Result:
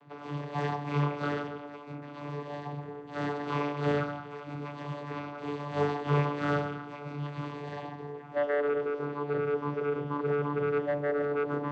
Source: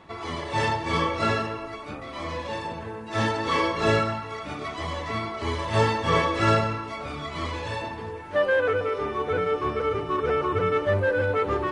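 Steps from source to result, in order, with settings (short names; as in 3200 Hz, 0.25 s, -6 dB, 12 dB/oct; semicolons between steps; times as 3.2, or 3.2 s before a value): vocoder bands 16, saw 145 Hz; gain -5 dB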